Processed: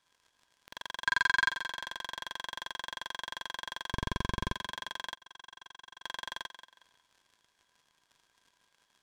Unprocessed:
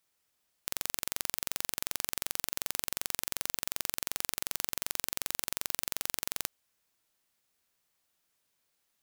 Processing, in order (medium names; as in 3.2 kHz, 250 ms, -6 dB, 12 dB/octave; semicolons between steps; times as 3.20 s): 3.92–4.55 s: bass shelf 200 Hz +11.5 dB; compression 2.5:1, threshold -47 dBFS, peak gain reduction 13.5 dB; 1.06–1.49 s: peaking EQ 1.5 kHz +8.5 dB 1.1 oct; sine folder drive 8 dB, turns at -15.5 dBFS; small resonant body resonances 1/1.6/3.3 kHz, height 16 dB, ringing for 40 ms; waveshaping leveller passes 5; low-pass 6.6 kHz 12 dB/octave; thinning echo 182 ms, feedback 32%, high-pass 170 Hz, level -11.5 dB; 5.15–6.04 s: gate -37 dBFS, range -25 dB